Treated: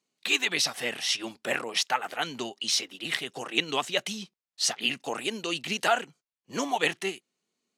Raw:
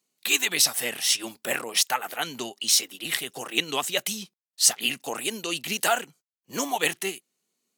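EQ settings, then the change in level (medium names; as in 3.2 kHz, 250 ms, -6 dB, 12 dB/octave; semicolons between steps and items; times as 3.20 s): dynamic bell 8.1 kHz, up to -5 dB, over -35 dBFS, Q 1.6; distance through air 72 m; 0.0 dB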